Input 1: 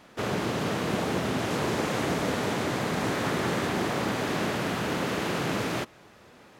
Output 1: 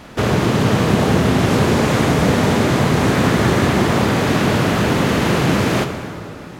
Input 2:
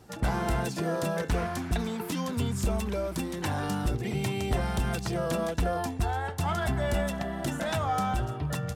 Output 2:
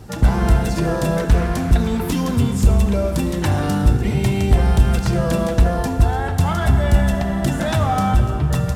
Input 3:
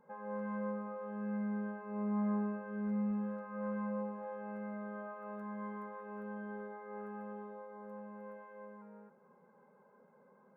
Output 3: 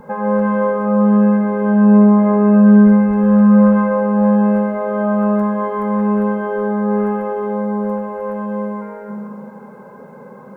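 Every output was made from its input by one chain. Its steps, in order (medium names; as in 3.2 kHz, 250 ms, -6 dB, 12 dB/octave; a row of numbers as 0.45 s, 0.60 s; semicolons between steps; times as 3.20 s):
bass shelf 140 Hz +12 dB; in parallel at +0.5 dB: compression, threshold -31 dBFS; on the sum: plate-style reverb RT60 2.6 s, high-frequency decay 0.65×, DRR 6 dB; peak normalisation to -1.5 dBFS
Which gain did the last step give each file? +6.5 dB, +3.5 dB, +18.0 dB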